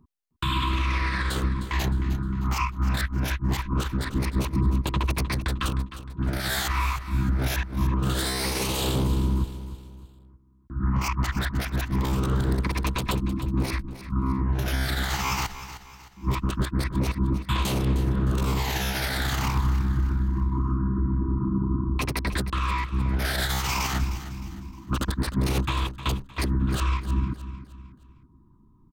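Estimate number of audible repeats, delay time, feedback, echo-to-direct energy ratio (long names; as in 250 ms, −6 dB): 3, 308 ms, 40%, −12.0 dB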